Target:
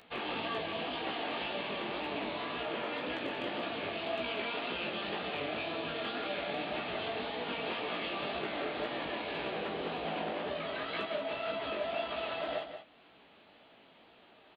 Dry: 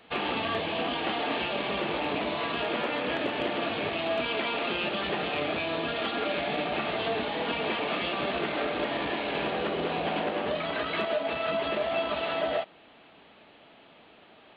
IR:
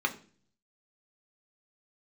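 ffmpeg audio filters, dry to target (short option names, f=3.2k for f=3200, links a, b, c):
-filter_complex "[0:a]asettb=1/sr,asplit=3[a][b][c];[a]atrim=end=2.424[d];[b]atrim=start=2.42:end=2.85,asetpts=PTS-STARTPTS,afade=t=in:d=0.004:c=qsin,afade=t=out:st=0.426:d=0.004:c=qsin,acrossover=split=4300[e][f];[f]acompressor=threshold=-57dB:ratio=4:attack=1:release=60[g];[e][g]amix=inputs=2:normalize=0[h];[c]atrim=start=2.846[i];[d][h]acrossfade=d=0.004:c1=hsin:c2=qsin[j];[j][i]acrossfade=d=0.004:c1=qsin:c2=hsin,bass=f=250:g=-1,treble=f=4k:g=4,acompressor=mode=upward:threshold=-48dB:ratio=2.5,flanger=delay=15.5:depth=7.7:speed=1.9,aecho=1:1:182:0.355,volume=-4.5dB"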